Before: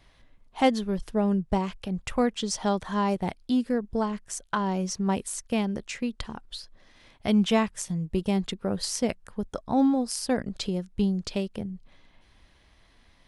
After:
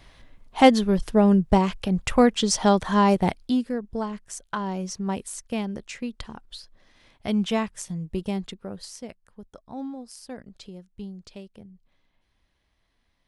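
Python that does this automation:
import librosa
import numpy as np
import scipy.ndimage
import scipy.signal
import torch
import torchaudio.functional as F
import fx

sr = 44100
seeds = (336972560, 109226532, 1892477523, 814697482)

y = fx.gain(x, sr, db=fx.line((3.29, 7.0), (3.71, -2.0), (8.27, -2.0), (9.07, -12.5)))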